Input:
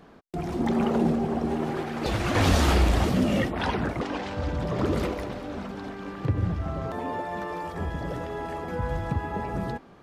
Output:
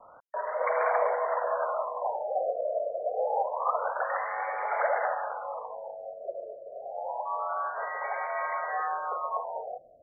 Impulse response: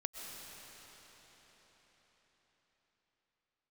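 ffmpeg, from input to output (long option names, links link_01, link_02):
-filter_complex "[0:a]acrossover=split=1900[link_01][link_02];[link_01]crystalizer=i=7:c=0[link_03];[link_03][link_02]amix=inputs=2:normalize=0,highpass=frequency=290:width_type=q:width=0.5412,highpass=frequency=290:width_type=q:width=1.307,lowpass=frequency=3300:width_type=q:width=0.5176,lowpass=frequency=3300:width_type=q:width=0.7071,lowpass=frequency=3300:width_type=q:width=1.932,afreqshift=260,acrusher=bits=8:mix=0:aa=0.000001,crystalizer=i=2:c=0,afftfilt=real='re*lt(b*sr/1024,700*pow(2400/700,0.5+0.5*sin(2*PI*0.27*pts/sr)))':imag='im*lt(b*sr/1024,700*pow(2400/700,0.5+0.5*sin(2*PI*0.27*pts/sr)))':win_size=1024:overlap=0.75"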